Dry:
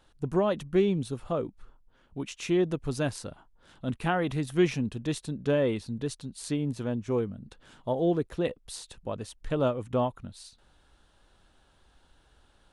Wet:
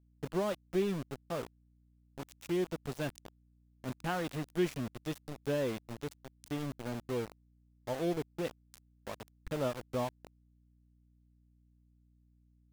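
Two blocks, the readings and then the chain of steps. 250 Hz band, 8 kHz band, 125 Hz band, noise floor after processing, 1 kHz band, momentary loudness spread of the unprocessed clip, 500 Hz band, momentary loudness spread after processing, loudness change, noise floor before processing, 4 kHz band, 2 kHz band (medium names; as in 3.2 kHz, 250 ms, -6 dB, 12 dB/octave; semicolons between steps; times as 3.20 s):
-8.0 dB, -8.0 dB, -8.5 dB, -68 dBFS, -6.5 dB, 14 LU, -7.5 dB, 14 LU, -7.5 dB, -64 dBFS, -6.0 dB, -6.0 dB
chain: small samples zeroed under -30.5 dBFS; hum 60 Hz, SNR 28 dB; trim -7.5 dB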